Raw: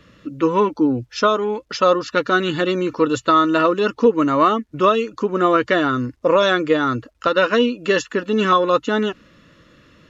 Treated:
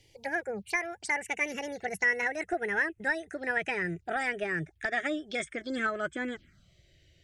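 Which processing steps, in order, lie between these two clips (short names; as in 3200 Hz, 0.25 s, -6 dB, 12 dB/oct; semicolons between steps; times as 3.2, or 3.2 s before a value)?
speed glide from 171% -> 108%; ten-band EQ 250 Hz -8 dB, 500 Hz -8 dB, 1000 Hz -11 dB, 2000 Hz +4 dB; envelope phaser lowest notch 190 Hz, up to 4400 Hz, full sweep at -23 dBFS; low shelf 350 Hz +7.5 dB; gain -9 dB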